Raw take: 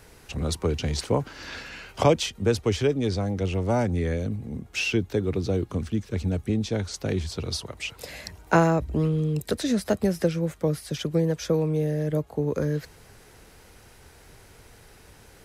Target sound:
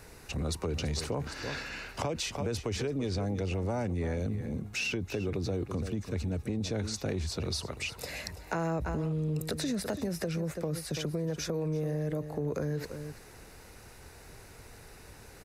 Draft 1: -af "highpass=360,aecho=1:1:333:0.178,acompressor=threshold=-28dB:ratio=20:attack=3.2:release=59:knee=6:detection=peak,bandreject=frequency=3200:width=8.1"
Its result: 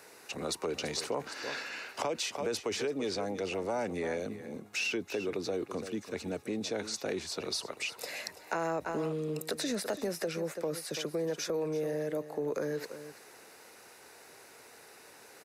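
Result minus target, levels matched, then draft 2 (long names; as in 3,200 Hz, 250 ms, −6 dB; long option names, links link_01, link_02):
500 Hz band +3.0 dB
-af "aecho=1:1:333:0.178,acompressor=threshold=-28dB:ratio=20:attack=3.2:release=59:knee=6:detection=peak,bandreject=frequency=3200:width=8.1"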